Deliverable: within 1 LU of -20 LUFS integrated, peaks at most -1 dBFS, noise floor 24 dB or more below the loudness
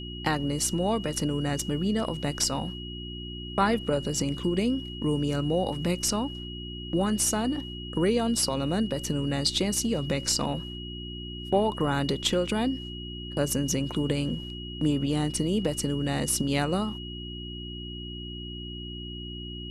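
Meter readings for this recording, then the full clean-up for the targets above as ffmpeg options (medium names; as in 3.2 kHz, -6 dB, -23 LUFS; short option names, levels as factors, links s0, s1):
hum 60 Hz; highest harmonic 360 Hz; hum level -36 dBFS; steady tone 2.9 kHz; tone level -40 dBFS; loudness -28.5 LUFS; peak level -11.0 dBFS; loudness target -20.0 LUFS
-> -af "bandreject=f=60:t=h:w=4,bandreject=f=120:t=h:w=4,bandreject=f=180:t=h:w=4,bandreject=f=240:t=h:w=4,bandreject=f=300:t=h:w=4,bandreject=f=360:t=h:w=4"
-af "bandreject=f=2900:w=30"
-af "volume=2.66"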